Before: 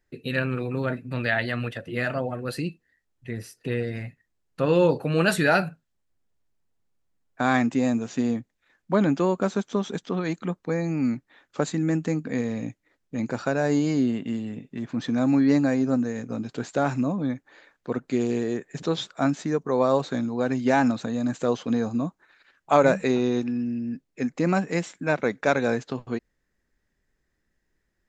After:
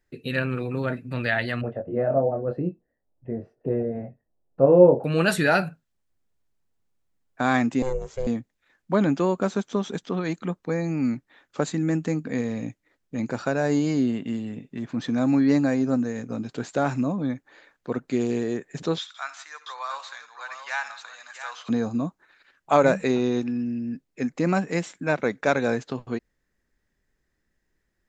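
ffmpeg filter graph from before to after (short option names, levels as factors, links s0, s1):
-filter_complex "[0:a]asettb=1/sr,asplit=3[s0][s1][s2];[s0]atrim=end=1.614[s3];[s1]atrim=start=1.61:end=5.04,asetpts=PTS-STARTPTS,afade=t=in:d=0.004:c=qsin,afade=t=out:st=3.426:d=0.004:c=qsin,lowpass=f=650:t=q:w=2.4,asplit=2[s4][s5];[s5]adelay=22,volume=0.531[s6];[s4][s6]amix=inputs=2:normalize=0,atrim=end_sample=151263[s7];[s2]atrim=start=5.036[s8];[s3][s7]acrossfade=d=0.004:c1=hsin:c2=qsin[s9];[s9][s8]acrossfade=d=0.004:c1=qsin:c2=hsin,asettb=1/sr,asplit=3[s10][s11][s12];[s10]atrim=end=7.824[s13];[s11]atrim=start=7.82:end=8.27,asetpts=PTS-STARTPTS,afade=t=in:d=0.004:c=qsin,afade=t=out:st=0.446:d=0.004:c=qsin,equalizer=f=2900:w=0.52:g=-9.5,aecho=1:1:1.1:0.56,atrim=end_sample=19845,aeval=exprs='val(0)*sin(2*PI*260*n/s)':c=same[s14];[s12]atrim=start=8.266[s15];[s13][s14]acrossfade=d=0.004:c1=hsin:c2=qsin[s16];[s16][s15]acrossfade=d=0.004:c1=qsin:c2=hsin,asettb=1/sr,asplit=3[s17][s18][s19];[s17]atrim=end=18.984[s20];[s18]atrim=start=18.98:end=21.69,asetpts=PTS-STARTPTS,afade=t=in:d=0.004:c=qsin,afade=t=out:st=2.706:d=0.004:c=qsin,highpass=f=1100:w=0.5412,highpass=f=1100:w=1.3066,highshelf=f=9300:g=-10.5,aecho=1:1:67|86|162|680:0.158|0.106|0.126|0.335,atrim=end_sample=119511[s21];[s19]atrim=start=21.686[s22];[s20][s21]acrossfade=d=0.004:c1=hsin:c2=qsin[s23];[s23][s22]acrossfade=d=0.004:c1=qsin:c2=hsin"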